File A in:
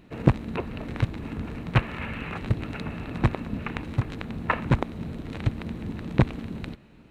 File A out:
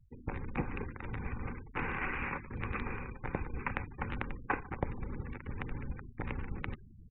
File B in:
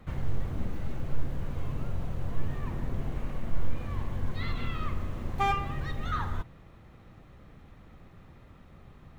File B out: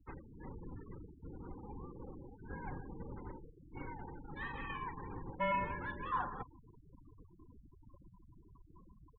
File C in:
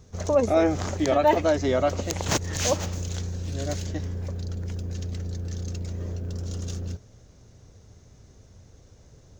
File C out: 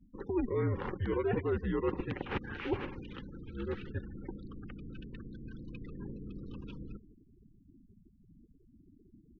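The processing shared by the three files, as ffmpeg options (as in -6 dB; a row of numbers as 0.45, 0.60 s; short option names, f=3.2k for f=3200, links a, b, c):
-af "asuperstop=centerf=860:order=4:qfactor=5.1,areverse,acompressor=threshold=-32dB:ratio=12,areverse,aecho=1:1:151|302|453:0.1|0.032|0.0102,afftfilt=real='re*gte(hypot(re,im),0.00447)':imag='im*gte(hypot(re,im),0.00447)':win_size=1024:overlap=0.75,highpass=f=230:t=q:w=0.5412,highpass=f=230:t=q:w=1.307,lowpass=f=3k:t=q:w=0.5176,lowpass=f=3k:t=q:w=0.7071,lowpass=f=3k:t=q:w=1.932,afreqshift=-210,volume=4dB"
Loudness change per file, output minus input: -10.5, -8.5, -11.0 LU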